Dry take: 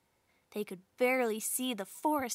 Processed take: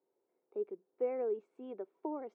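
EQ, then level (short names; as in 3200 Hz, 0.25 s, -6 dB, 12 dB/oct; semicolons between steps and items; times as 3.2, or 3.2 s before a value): ladder band-pass 430 Hz, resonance 65%; air absorption 84 m; +4.0 dB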